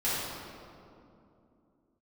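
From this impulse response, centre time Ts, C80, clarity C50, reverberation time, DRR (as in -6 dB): 149 ms, -1.0 dB, -3.5 dB, 2.7 s, -12.5 dB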